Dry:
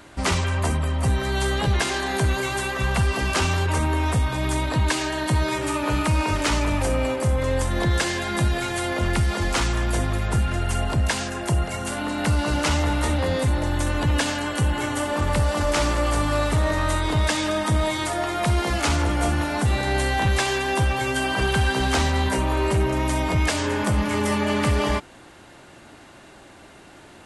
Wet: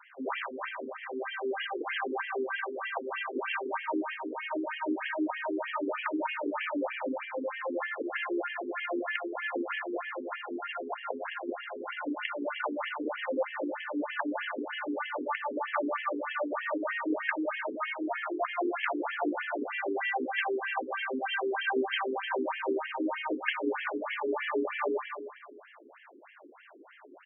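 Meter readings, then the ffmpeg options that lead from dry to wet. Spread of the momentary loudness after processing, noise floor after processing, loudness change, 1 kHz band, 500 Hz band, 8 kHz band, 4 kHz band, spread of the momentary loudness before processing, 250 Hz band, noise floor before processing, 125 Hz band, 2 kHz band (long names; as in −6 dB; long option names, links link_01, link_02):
6 LU, −55 dBFS, −10.5 dB, −8.0 dB, −7.0 dB, below −40 dB, −13.5 dB, 3 LU, −9.0 dB, −47 dBFS, below −40 dB, −6.5 dB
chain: -filter_complex "[0:a]asplit=2[link_01][link_02];[link_02]adelay=154,lowpass=frequency=4100:poles=1,volume=-6.5dB,asplit=2[link_03][link_04];[link_04]adelay=154,lowpass=frequency=4100:poles=1,volume=0.53,asplit=2[link_05][link_06];[link_06]adelay=154,lowpass=frequency=4100:poles=1,volume=0.53,asplit=2[link_07][link_08];[link_08]adelay=154,lowpass=frequency=4100:poles=1,volume=0.53,asplit=2[link_09][link_10];[link_10]adelay=154,lowpass=frequency=4100:poles=1,volume=0.53,asplit=2[link_11][link_12];[link_12]adelay=154,lowpass=frequency=4100:poles=1,volume=0.53,asplit=2[link_13][link_14];[link_14]adelay=154,lowpass=frequency=4100:poles=1,volume=0.53[link_15];[link_01][link_03][link_05][link_07][link_09][link_11][link_13][link_15]amix=inputs=8:normalize=0,afftfilt=real='re*between(b*sr/1024,320*pow(2400/320,0.5+0.5*sin(2*PI*3.2*pts/sr))/1.41,320*pow(2400/320,0.5+0.5*sin(2*PI*3.2*pts/sr))*1.41)':imag='im*between(b*sr/1024,320*pow(2400/320,0.5+0.5*sin(2*PI*3.2*pts/sr))/1.41,320*pow(2400/320,0.5+0.5*sin(2*PI*3.2*pts/sr))*1.41)':win_size=1024:overlap=0.75,volume=-2dB"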